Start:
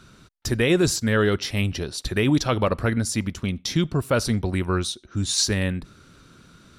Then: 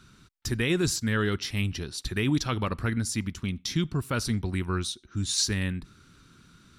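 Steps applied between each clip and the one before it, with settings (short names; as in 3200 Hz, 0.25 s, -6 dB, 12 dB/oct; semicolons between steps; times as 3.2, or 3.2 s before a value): bell 580 Hz -10 dB 0.92 oct; gain -4 dB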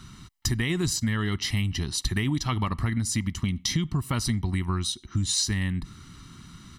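comb 1 ms, depth 64%; compressor, threshold -30 dBFS, peak gain reduction 11 dB; gain +7 dB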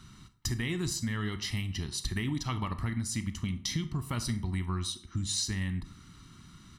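reverb RT60 0.55 s, pre-delay 22 ms, DRR 10.5 dB; gain -6.5 dB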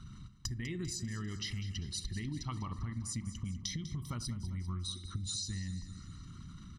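formant sharpening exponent 1.5; compressor 6:1, threshold -40 dBFS, peak gain reduction 12.5 dB; feedback echo 0.198 s, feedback 57%, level -13.5 dB; gain +3.5 dB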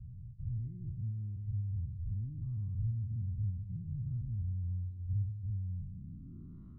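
spectral dilation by 0.12 s; low-pass sweep 110 Hz -> 580 Hz, 5.76–6.69; gain -6 dB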